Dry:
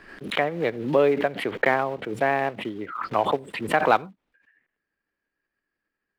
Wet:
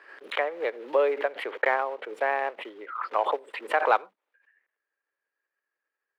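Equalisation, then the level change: HPF 470 Hz 24 dB/oct; bell 700 Hz -5 dB 0.25 oct; high shelf 3400 Hz -12 dB; 0.0 dB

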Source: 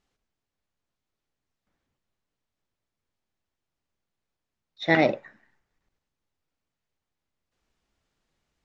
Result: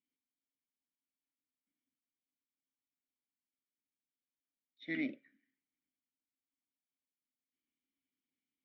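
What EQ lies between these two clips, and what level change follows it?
vowel filter i; -4.5 dB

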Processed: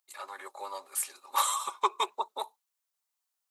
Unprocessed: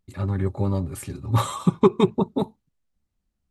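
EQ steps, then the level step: HPF 490 Hz 24 dB/oct; tilt +4.5 dB/oct; bell 990 Hz +8 dB 0.91 oct; -7.5 dB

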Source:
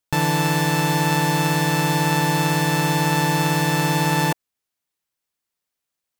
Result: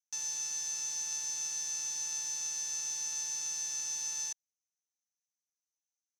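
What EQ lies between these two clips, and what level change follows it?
band-pass 6100 Hz, Q 15; +5.0 dB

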